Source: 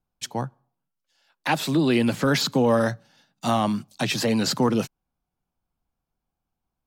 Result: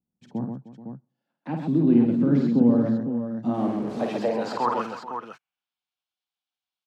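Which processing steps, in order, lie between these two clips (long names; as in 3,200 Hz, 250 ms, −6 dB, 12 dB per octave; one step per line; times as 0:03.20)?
0:03.54–0:04.18: linear delta modulator 64 kbit/s, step −23 dBFS
band-pass filter sweep 220 Hz → 3,500 Hz, 0:03.32–0:05.69
on a send: multi-tap delay 50/130/307/431/508 ms −5.5/−5/−16.5/−16/−8 dB
on the sum: level +5 dB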